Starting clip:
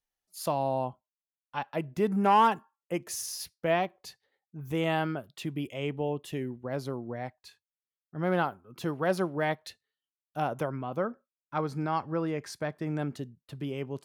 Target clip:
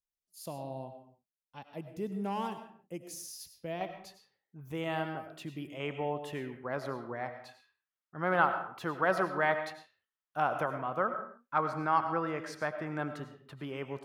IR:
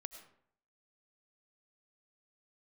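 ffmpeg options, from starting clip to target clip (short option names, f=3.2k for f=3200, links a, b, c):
-filter_complex "[0:a]asetnsamples=n=441:p=0,asendcmd='3.81 equalizer g 3;5.8 equalizer g 13.5',equalizer=f=1.3k:t=o:w=2:g=-10[a];[1:a]atrim=start_sample=2205,afade=t=out:st=0.38:d=0.01,atrim=end_sample=17199[b];[a][b]afir=irnorm=-1:irlink=0,volume=-3dB"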